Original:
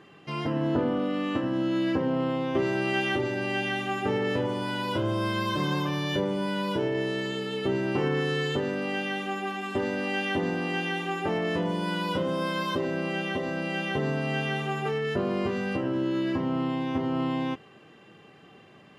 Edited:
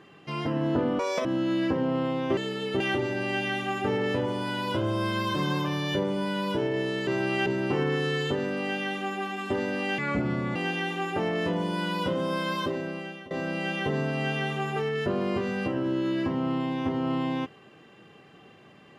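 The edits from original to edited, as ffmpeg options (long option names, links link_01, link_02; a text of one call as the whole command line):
ffmpeg -i in.wav -filter_complex "[0:a]asplit=10[link_01][link_02][link_03][link_04][link_05][link_06][link_07][link_08][link_09][link_10];[link_01]atrim=end=0.994[link_11];[link_02]atrim=start=0.99:end=1.5,asetpts=PTS-STARTPTS,asetrate=85995,aresample=44100[link_12];[link_03]atrim=start=1.496:end=2.622[link_13];[link_04]atrim=start=7.278:end=7.712[link_14];[link_05]atrim=start=3.008:end=7.282[link_15];[link_06]atrim=start=2.618:end=3.012[link_16];[link_07]atrim=start=7.708:end=10.234[link_17];[link_08]atrim=start=10.23:end=10.65,asetpts=PTS-STARTPTS,asetrate=32193,aresample=44100[link_18];[link_09]atrim=start=10.646:end=13.4,asetpts=PTS-STARTPTS,afade=type=out:start_time=2.024:duration=0.73:silence=0.11885[link_19];[link_10]atrim=start=13.4,asetpts=PTS-STARTPTS,afade=type=in:duration=0.004:curve=hsin:silence=0.11885[link_20];[link_11][link_12]acrossfade=duration=0.004:curve1=hsin:curve2=hsin[link_21];[link_21][link_13]acrossfade=duration=0.004:curve1=hsin:curve2=hsin[link_22];[link_22][link_14]acrossfade=duration=0.004:curve1=hsin:curve2=hsin[link_23];[link_23][link_15]acrossfade=duration=0.004:curve1=hsin:curve2=hsin[link_24];[link_24][link_16]acrossfade=duration=0.004:curve1=hsin:curve2=hsin[link_25];[link_25][link_17]acrossfade=duration=0.004:curve1=hsin:curve2=hsin[link_26];[link_26][link_18]acrossfade=duration=0.004:curve1=hsin:curve2=hsin[link_27];[link_19][link_20]concat=n=2:v=0:a=1[link_28];[link_27][link_28]acrossfade=duration=0.004:curve1=hsin:curve2=hsin" out.wav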